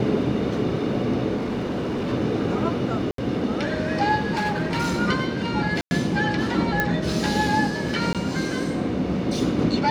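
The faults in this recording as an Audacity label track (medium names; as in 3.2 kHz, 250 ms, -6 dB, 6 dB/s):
1.350000	2.130000	clipped -22.5 dBFS
3.110000	3.180000	dropout 73 ms
4.350000	5.000000	clipped -20 dBFS
5.810000	5.910000	dropout 100 ms
6.800000	6.800000	pop -7 dBFS
8.130000	8.150000	dropout 17 ms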